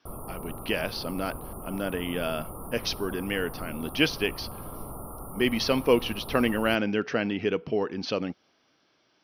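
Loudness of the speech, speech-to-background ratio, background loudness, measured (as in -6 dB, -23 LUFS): -28.5 LUFS, 12.0 dB, -40.5 LUFS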